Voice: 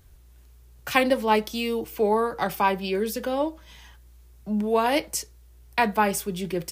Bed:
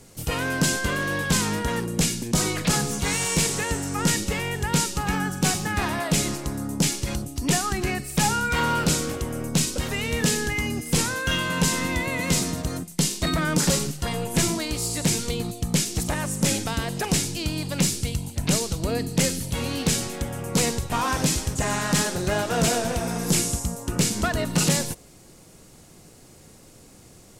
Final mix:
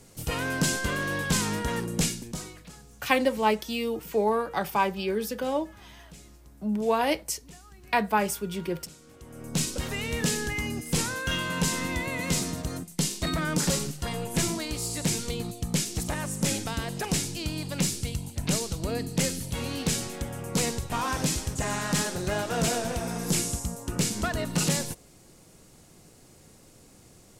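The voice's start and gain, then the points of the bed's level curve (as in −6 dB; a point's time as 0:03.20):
2.15 s, −2.5 dB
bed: 0:02.06 −3.5 dB
0:02.76 −27.5 dB
0:09.00 −27.5 dB
0:09.60 −4.5 dB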